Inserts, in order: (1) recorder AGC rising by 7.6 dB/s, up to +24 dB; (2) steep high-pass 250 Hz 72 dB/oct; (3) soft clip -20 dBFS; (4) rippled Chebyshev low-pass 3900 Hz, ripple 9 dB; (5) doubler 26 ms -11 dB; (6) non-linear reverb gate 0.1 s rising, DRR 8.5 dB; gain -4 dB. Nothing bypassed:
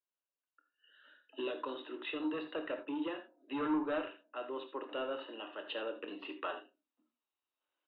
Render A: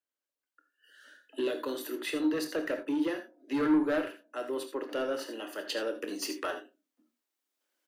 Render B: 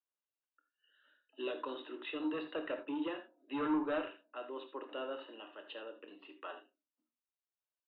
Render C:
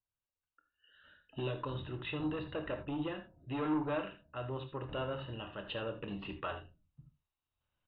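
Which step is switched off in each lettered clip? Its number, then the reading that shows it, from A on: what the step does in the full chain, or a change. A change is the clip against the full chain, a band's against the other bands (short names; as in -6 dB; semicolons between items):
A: 4, 1 kHz band -4.5 dB; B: 1, momentary loudness spread change +5 LU; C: 2, 125 Hz band +22.0 dB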